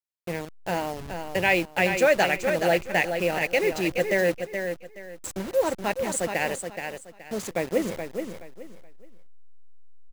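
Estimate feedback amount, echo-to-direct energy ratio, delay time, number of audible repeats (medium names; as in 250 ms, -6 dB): 26%, -6.5 dB, 424 ms, 3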